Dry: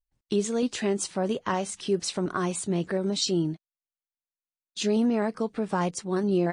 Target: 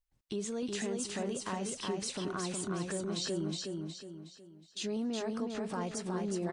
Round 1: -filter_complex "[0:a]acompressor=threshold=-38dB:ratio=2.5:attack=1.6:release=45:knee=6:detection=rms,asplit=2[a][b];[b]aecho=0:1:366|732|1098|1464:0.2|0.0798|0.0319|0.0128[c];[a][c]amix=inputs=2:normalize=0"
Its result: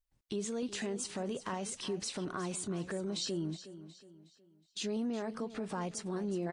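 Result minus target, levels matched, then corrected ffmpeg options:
echo-to-direct -10.5 dB
-filter_complex "[0:a]acompressor=threshold=-38dB:ratio=2.5:attack=1.6:release=45:knee=6:detection=rms,asplit=2[a][b];[b]aecho=0:1:366|732|1098|1464|1830:0.668|0.267|0.107|0.0428|0.0171[c];[a][c]amix=inputs=2:normalize=0"

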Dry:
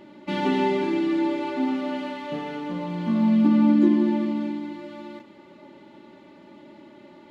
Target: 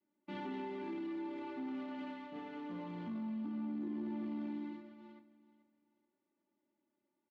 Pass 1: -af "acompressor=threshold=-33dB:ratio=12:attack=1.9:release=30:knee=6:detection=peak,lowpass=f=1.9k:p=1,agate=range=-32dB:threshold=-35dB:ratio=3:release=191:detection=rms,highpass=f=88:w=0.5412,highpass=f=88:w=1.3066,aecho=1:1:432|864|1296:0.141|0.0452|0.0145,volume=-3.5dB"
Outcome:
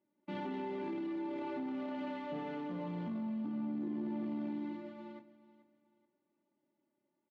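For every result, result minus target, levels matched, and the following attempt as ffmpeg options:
125 Hz band +2.0 dB; 500 Hz band +2.0 dB
-af "acompressor=threshold=-33dB:ratio=12:attack=1.9:release=30:knee=6:detection=peak,lowpass=f=1.9k:p=1,agate=range=-32dB:threshold=-35dB:ratio=3:release=191:detection=rms,highpass=f=88:w=0.5412,highpass=f=88:w=1.3066,equalizer=f=150:w=4.5:g=-14.5,aecho=1:1:432|864|1296:0.141|0.0452|0.0145,volume=-3.5dB"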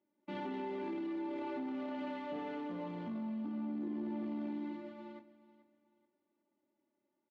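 500 Hz band +3.0 dB
-af "acompressor=threshold=-33dB:ratio=12:attack=1.9:release=30:knee=6:detection=peak,adynamicequalizer=threshold=0.002:dfrequency=570:dqfactor=1.5:tfrequency=570:tqfactor=1.5:attack=5:release=100:ratio=0.417:range=3:mode=cutabove:tftype=bell,lowpass=f=1.9k:p=1,agate=range=-32dB:threshold=-35dB:ratio=3:release=191:detection=rms,highpass=f=88:w=0.5412,highpass=f=88:w=1.3066,equalizer=f=150:w=4.5:g=-14.5,aecho=1:1:432|864|1296:0.141|0.0452|0.0145,volume=-3.5dB"

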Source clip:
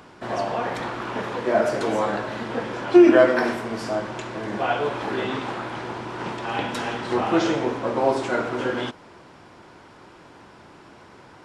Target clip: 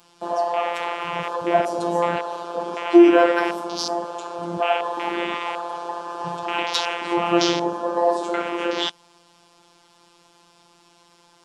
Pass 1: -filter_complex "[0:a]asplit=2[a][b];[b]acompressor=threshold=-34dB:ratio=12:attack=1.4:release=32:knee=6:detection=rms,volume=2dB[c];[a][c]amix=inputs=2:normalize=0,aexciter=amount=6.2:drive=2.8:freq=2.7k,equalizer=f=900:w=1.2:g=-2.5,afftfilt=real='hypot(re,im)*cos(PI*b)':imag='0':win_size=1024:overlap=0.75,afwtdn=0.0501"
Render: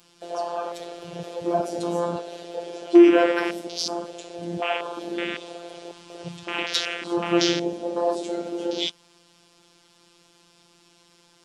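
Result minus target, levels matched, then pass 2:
1000 Hz band -6.0 dB
-filter_complex "[0:a]asplit=2[a][b];[b]acompressor=threshold=-34dB:ratio=12:attack=1.4:release=32:knee=6:detection=rms,volume=2dB[c];[a][c]amix=inputs=2:normalize=0,aexciter=amount=6.2:drive=2.8:freq=2.7k,equalizer=f=900:w=1.2:g=6,afftfilt=real='hypot(re,im)*cos(PI*b)':imag='0':win_size=1024:overlap=0.75,afwtdn=0.0501"

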